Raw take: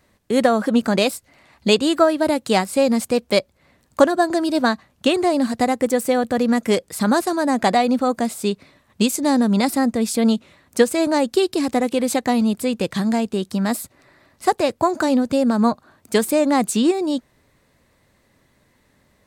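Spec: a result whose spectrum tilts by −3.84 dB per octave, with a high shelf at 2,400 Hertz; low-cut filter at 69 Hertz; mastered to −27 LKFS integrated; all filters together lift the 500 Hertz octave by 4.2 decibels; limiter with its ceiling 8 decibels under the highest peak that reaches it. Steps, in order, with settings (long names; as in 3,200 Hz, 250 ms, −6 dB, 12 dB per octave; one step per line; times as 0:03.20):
high-pass filter 69 Hz
parametric band 500 Hz +5.5 dB
high-shelf EQ 2,400 Hz −8.5 dB
level −8.5 dB
brickwall limiter −15.5 dBFS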